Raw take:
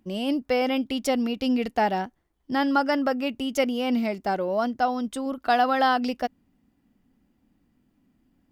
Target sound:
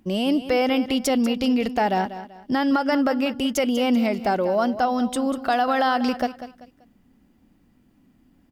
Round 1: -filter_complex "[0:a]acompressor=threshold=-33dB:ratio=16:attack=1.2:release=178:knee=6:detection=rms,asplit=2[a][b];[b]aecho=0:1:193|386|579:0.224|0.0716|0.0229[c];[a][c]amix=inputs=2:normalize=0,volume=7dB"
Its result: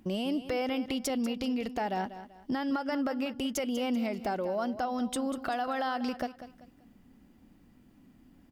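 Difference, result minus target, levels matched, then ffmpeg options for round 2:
compressor: peak gain reduction +11 dB
-filter_complex "[0:a]acompressor=threshold=-21dB:ratio=16:attack=1.2:release=178:knee=6:detection=rms,asplit=2[a][b];[b]aecho=0:1:193|386|579:0.224|0.0716|0.0229[c];[a][c]amix=inputs=2:normalize=0,volume=7dB"

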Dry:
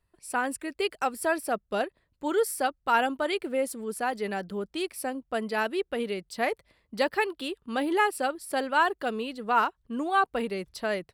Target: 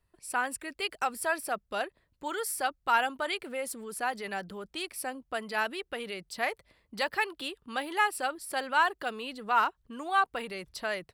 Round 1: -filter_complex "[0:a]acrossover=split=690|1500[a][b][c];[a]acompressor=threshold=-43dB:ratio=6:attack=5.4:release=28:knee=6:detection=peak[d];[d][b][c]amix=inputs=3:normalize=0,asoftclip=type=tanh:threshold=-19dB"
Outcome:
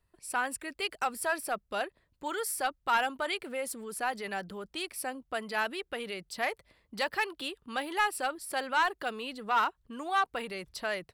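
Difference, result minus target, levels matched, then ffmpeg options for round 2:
soft clip: distortion +13 dB
-filter_complex "[0:a]acrossover=split=690|1500[a][b][c];[a]acompressor=threshold=-43dB:ratio=6:attack=5.4:release=28:knee=6:detection=peak[d];[d][b][c]amix=inputs=3:normalize=0,asoftclip=type=tanh:threshold=-10.5dB"

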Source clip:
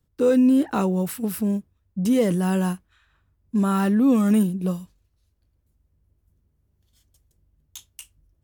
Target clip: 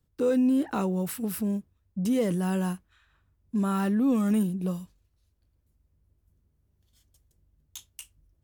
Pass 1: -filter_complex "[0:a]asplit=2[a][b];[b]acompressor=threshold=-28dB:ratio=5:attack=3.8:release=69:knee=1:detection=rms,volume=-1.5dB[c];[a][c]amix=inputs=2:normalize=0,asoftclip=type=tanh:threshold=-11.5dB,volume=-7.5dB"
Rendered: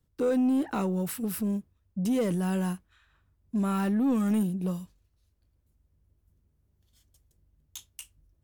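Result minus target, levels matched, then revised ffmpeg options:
soft clip: distortion +18 dB
-filter_complex "[0:a]asplit=2[a][b];[b]acompressor=threshold=-28dB:ratio=5:attack=3.8:release=69:knee=1:detection=rms,volume=-1.5dB[c];[a][c]amix=inputs=2:normalize=0,asoftclip=type=tanh:threshold=-1.5dB,volume=-7.5dB"

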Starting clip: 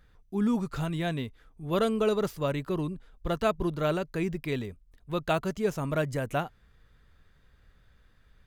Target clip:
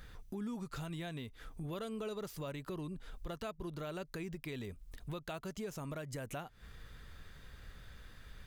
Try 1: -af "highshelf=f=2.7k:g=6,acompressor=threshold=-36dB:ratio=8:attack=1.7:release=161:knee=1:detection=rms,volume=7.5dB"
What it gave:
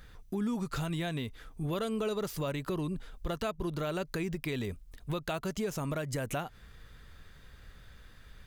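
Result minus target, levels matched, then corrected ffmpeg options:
compressor: peak gain reduction -8.5 dB
-af "highshelf=f=2.7k:g=6,acompressor=threshold=-45.5dB:ratio=8:attack=1.7:release=161:knee=1:detection=rms,volume=7.5dB"

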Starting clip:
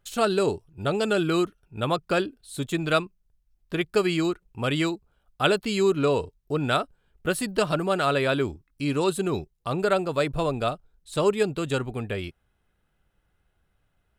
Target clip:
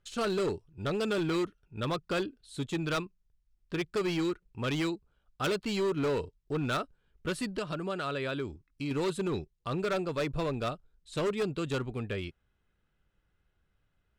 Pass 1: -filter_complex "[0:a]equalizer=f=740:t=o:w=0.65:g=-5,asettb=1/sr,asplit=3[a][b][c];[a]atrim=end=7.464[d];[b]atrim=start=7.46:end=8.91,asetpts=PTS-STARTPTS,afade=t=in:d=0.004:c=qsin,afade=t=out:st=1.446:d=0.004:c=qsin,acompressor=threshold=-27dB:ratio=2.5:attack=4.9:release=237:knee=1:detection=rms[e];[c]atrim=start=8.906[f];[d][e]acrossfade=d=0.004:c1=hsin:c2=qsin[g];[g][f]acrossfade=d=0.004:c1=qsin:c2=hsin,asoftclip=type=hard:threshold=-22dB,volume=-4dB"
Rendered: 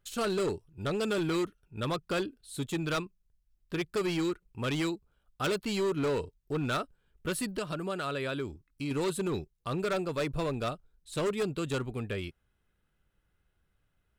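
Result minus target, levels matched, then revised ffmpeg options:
8000 Hz band +4.0 dB
-filter_complex "[0:a]lowpass=6.7k,equalizer=f=740:t=o:w=0.65:g=-5,asettb=1/sr,asplit=3[a][b][c];[a]atrim=end=7.464[d];[b]atrim=start=7.46:end=8.91,asetpts=PTS-STARTPTS,afade=t=in:d=0.004:c=qsin,afade=t=out:st=1.446:d=0.004:c=qsin,acompressor=threshold=-27dB:ratio=2.5:attack=4.9:release=237:knee=1:detection=rms[e];[c]atrim=start=8.906[f];[d][e]acrossfade=d=0.004:c1=hsin:c2=qsin[g];[g][f]acrossfade=d=0.004:c1=qsin:c2=hsin,asoftclip=type=hard:threshold=-22dB,volume=-4dB"

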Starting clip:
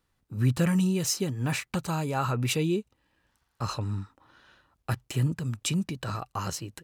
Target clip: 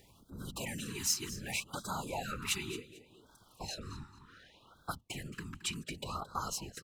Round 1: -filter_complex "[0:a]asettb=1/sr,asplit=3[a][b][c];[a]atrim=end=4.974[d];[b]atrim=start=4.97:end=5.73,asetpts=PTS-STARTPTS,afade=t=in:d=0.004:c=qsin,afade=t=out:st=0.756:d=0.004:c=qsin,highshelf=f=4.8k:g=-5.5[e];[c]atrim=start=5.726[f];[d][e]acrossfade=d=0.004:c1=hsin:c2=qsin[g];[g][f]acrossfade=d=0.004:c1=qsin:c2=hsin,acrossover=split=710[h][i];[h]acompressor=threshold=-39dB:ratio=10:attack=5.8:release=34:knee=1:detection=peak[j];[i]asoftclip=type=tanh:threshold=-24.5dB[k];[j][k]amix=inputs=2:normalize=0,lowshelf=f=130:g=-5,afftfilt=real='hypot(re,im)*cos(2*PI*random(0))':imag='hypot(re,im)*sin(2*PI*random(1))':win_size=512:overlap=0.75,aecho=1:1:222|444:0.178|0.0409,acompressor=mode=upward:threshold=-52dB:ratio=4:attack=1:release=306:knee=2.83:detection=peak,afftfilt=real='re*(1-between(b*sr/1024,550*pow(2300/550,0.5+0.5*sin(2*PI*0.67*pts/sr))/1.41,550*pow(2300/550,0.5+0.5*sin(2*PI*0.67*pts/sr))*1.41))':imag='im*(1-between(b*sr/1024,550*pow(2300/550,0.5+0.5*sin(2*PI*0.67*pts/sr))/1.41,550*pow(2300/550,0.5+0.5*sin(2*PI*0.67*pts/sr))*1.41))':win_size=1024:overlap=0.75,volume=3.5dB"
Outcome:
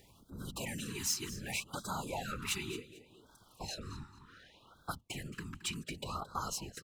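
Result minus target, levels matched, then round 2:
soft clip: distortion +16 dB
-filter_complex "[0:a]asettb=1/sr,asplit=3[a][b][c];[a]atrim=end=4.974[d];[b]atrim=start=4.97:end=5.73,asetpts=PTS-STARTPTS,afade=t=in:d=0.004:c=qsin,afade=t=out:st=0.756:d=0.004:c=qsin,highshelf=f=4.8k:g=-5.5[e];[c]atrim=start=5.726[f];[d][e]acrossfade=d=0.004:c1=hsin:c2=qsin[g];[g][f]acrossfade=d=0.004:c1=qsin:c2=hsin,acrossover=split=710[h][i];[h]acompressor=threshold=-39dB:ratio=10:attack=5.8:release=34:knee=1:detection=peak[j];[i]asoftclip=type=tanh:threshold=-14dB[k];[j][k]amix=inputs=2:normalize=0,lowshelf=f=130:g=-5,afftfilt=real='hypot(re,im)*cos(2*PI*random(0))':imag='hypot(re,im)*sin(2*PI*random(1))':win_size=512:overlap=0.75,aecho=1:1:222|444:0.178|0.0409,acompressor=mode=upward:threshold=-52dB:ratio=4:attack=1:release=306:knee=2.83:detection=peak,afftfilt=real='re*(1-between(b*sr/1024,550*pow(2300/550,0.5+0.5*sin(2*PI*0.67*pts/sr))/1.41,550*pow(2300/550,0.5+0.5*sin(2*PI*0.67*pts/sr))*1.41))':imag='im*(1-between(b*sr/1024,550*pow(2300/550,0.5+0.5*sin(2*PI*0.67*pts/sr))/1.41,550*pow(2300/550,0.5+0.5*sin(2*PI*0.67*pts/sr))*1.41))':win_size=1024:overlap=0.75,volume=3.5dB"

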